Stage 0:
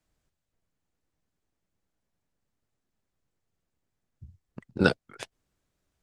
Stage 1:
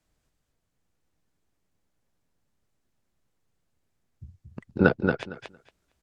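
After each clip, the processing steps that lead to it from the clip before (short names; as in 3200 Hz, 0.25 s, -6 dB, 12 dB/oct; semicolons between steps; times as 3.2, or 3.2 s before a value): treble ducked by the level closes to 1800 Hz, closed at -30 dBFS; on a send: feedback echo 0.229 s, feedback 16%, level -5 dB; on the sum: gain +3 dB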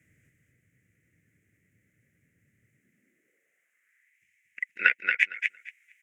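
EQ curve 300 Hz 0 dB, 550 Hz -5 dB, 930 Hz -27 dB, 2000 Hz +14 dB, 4300 Hz -23 dB, 6700 Hz -3 dB; high-pass sweep 110 Hz -> 2300 Hz, 2.67–4.14; gain +8.5 dB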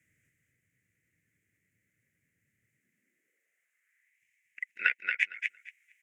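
tilt shelf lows -4 dB, about 1200 Hz; gain -7 dB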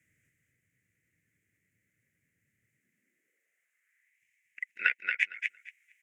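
nothing audible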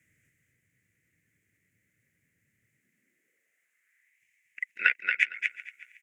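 feedback echo 0.369 s, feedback 24%, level -20.5 dB; gain +3.5 dB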